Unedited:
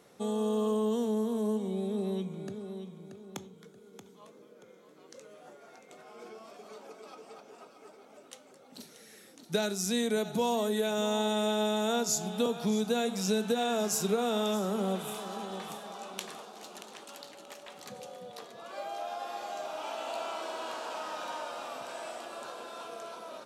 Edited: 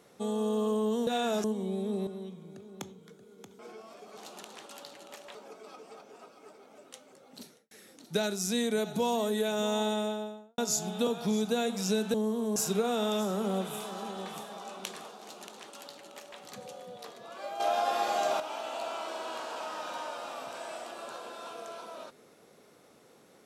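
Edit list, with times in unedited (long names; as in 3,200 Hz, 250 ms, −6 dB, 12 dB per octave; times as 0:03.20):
0:01.07–0:01.49: swap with 0:13.53–0:13.90
0:02.12–0:02.62: remove
0:04.14–0:06.16: remove
0:08.82–0:09.10: fade out and dull
0:11.19–0:11.97: fade out and dull
0:16.55–0:17.73: duplicate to 0:06.74
0:18.94–0:19.74: clip gain +9.5 dB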